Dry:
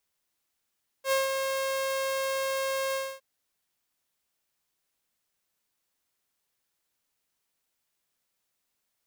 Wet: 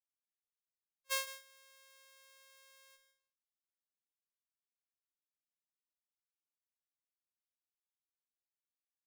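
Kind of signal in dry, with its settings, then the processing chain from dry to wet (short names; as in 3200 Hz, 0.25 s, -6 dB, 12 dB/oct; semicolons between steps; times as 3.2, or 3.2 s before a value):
ADSR saw 537 Hz, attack 78 ms, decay 0.159 s, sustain -5.5 dB, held 1.90 s, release 0.262 s -19.5 dBFS
gate -26 dBFS, range -33 dB; passive tone stack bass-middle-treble 10-0-10; echo 0.157 s -14 dB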